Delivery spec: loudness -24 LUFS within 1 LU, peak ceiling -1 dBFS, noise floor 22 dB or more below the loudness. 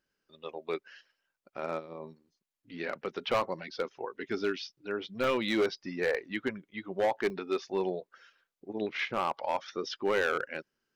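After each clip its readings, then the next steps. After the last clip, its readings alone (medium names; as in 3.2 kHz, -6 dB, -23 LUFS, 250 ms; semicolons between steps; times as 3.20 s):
clipped samples 1.0%; clipping level -22.0 dBFS; dropouts 2; longest dropout 1.1 ms; loudness -33.5 LUFS; peak level -22.0 dBFS; loudness target -24.0 LUFS
-> clip repair -22 dBFS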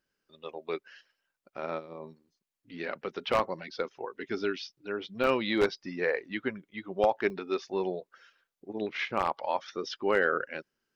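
clipped samples 0.0%; dropouts 2; longest dropout 1.1 ms
-> interpolate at 5.24/7.30 s, 1.1 ms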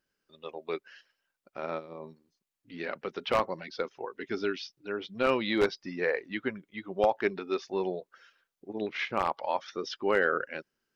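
dropouts 0; loudness -32.0 LUFS; peak level -13.0 dBFS; loudness target -24.0 LUFS
-> trim +8 dB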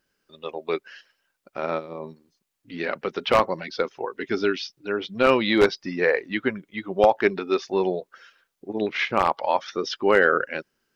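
loudness -24.0 LUFS; peak level -5.0 dBFS; noise floor -77 dBFS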